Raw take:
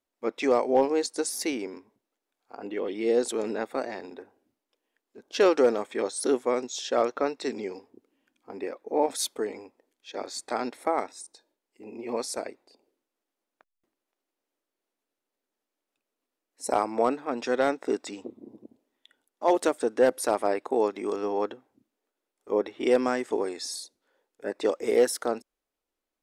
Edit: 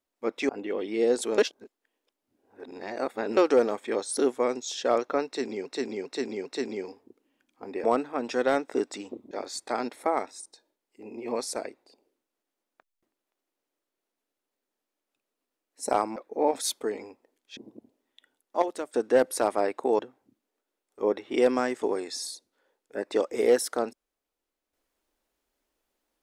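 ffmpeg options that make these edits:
-filter_complex "[0:a]asplit=14[s0][s1][s2][s3][s4][s5][s6][s7][s8][s9][s10][s11][s12][s13];[s0]atrim=end=0.492[s14];[s1]atrim=start=2.558:end=3.452[s15];[s2]atrim=start=3.448:end=5.442,asetpts=PTS-STARTPTS,areverse[s16];[s3]atrim=start=5.438:end=7.732[s17];[s4]atrim=start=7.328:end=7.732[s18];[s5]atrim=start=7.328:end=7.732[s19];[s6]atrim=start=7.328:end=8.712[s20];[s7]atrim=start=16.968:end=18.442[s21];[s8]atrim=start=10.118:end=16.972[s22];[s9]atrim=start=8.708:end=10.122[s23];[s10]atrim=start=18.438:end=19.492[s24];[s11]atrim=start=19.488:end=19.812,asetpts=PTS-STARTPTS,volume=0.335[s25];[s12]atrim=start=19.808:end=20.862[s26];[s13]atrim=start=21.478[s27];[s14][s15]acrossfade=d=0.004:c1=hsin:c2=hsin[s28];[s28][s16]acrossfade=d=0.004:c1=hsin:c2=hsin[s29];[s29][s17]acrossfade=d=0.004:c1=hsin:c2=hsin[s30];[s30][s18]acrossfade=d=0.004:c1=hsin:c2=hsin[s31];[s31][s19]acrossfade=d=0.004:c1=hsin:c2=hsin[s32];[s32][s20]acrossfade=d=0.004:c1=hsin:c2=hsin[s33];[s33][s21]acrossfade=d=0.004:c1=hsin:c2=hsin[s34];[s34][s22]acrossfade=d=0.004:c1=hsin:c2=hsin[s35];[s35][s23]acrossfade=d=0.004:c1=hsin:c2=hsin[s36];[s36][s24]acrossfade=d=0.004:c1=hsin:c2=hsin[s37];[s37][s25]acrossfade=d=0.004:c1=hsin:c2=hsin[s38];[s38][s26]acrossfade=d=0.004:c1=hsin:c2=hsin[s39];[s39][s27]acrossfade=d=0.004:c1=hsin:c2=hsin"

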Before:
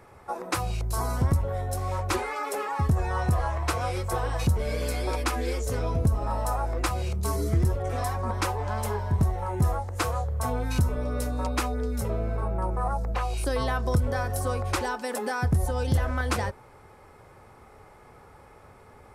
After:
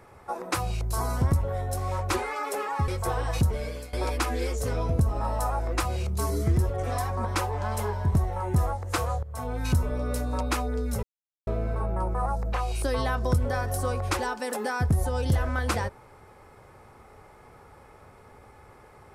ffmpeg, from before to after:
-filter_complex "[0:a]asplit=5[s0][s1][s2][s3][s4];[s0]atrim=end=2.882[s5];[s1]atrim=start=3.938:end=4.99,asetpts=PTS-STARTPTS,afade=t=out:st=0.582:d=0.47:silence=0.112202[s6];[s2]atrim=start=4.99:end=10.29,asetpts=PTS-STARTPTS,afade=t=in:d=0.004:c=hsin:silence=0.112202,afade=t=out:st=5.296:d=0.004:c=hsin:silence=0.199526[s7];[s3]atrim=start=10.29:end=12.09,asetpts=PTS-STARTPTS,afade=t=in:d=0.45:silence=0.199526,afade=t=out:st=1.796:d=0.004:c=hsin,apad=pad_dur=0.44[s8];[s4]atrim=start=12.09,asetpts=PTS-STARTPTS,afade=t=in:d=0.004:c=hsin[s9];[s6][s7][s8][s9]concat=n=4:v=0:a=1[s10];[s5][s10]acrossfade=d=0.004:c1=hsin:c2=hsin"

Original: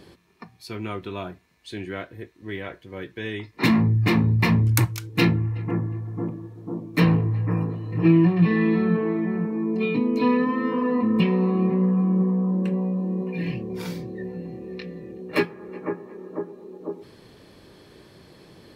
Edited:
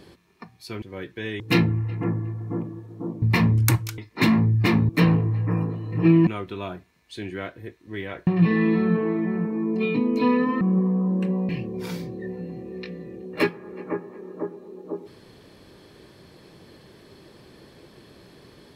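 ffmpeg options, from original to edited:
-filter_complex "[0:a]asplit=10[s0][s1][s2][s3][s4][s5][s6][s7][s8][s9];[s0]atrim=end=0.822[s10];[s1]atrim=start=2.818:end=3.402[s11];[s2]atrim=start=5.068:end=6.892[s12];[s3]atrim=start=4.308:end=5.072[s13];[s4]atrim=start=3.398:end=4.312[s14];[s5]atrim=start=6.888:end=8.272[s15];[s6]atrim=start=0.818:end=2.822[s16];[s7]atrim=start=8.268:end=10.612[s17];[s8]atrim=start=12.038:end=12.922[s18];[s9]atrim=start=13.448[s19];[s10][s11]acrossfade=d=0.004:c1=hsin:c2=hsin[s20];[s20][s12]acrossfade=d=0.004:c1=hsin:c2=hsin[s21];[s21][s13]acrossfade=d=0.004:c1=hsin:c2=hsin[s22];[s22][s14]acrossfade=d=0.004:c1=hsin:c2=hsin[s23];[s23][s15]acrossfade=d=0.004:c1=hsin:c2=hsin[s24];[s24][s16]acrossfade=d=0.004:c1=hsin:c2=hsin[s25];[s25][s17]acrossfade=d=0.004:c1=hsin:c2=hsin[s26];[s26][s18]acrossfade=d=0.004:c1=hsin:c2=hsin[s27];[s27][s19]acrossfade=d=0.004:c1=hsin:c2=hsin"

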